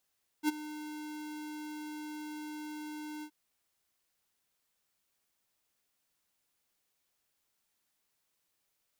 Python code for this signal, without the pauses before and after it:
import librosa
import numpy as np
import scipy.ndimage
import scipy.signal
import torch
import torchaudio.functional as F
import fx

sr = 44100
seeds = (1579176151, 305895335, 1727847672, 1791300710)

y = fx.adsr_tone(sr, wave='square', hz=303.0, attack_ms=55.0, decay_ms=20.0, sustain_db=-16.0, held_s=2.8, release_ms=72.0, level_db=-26.5)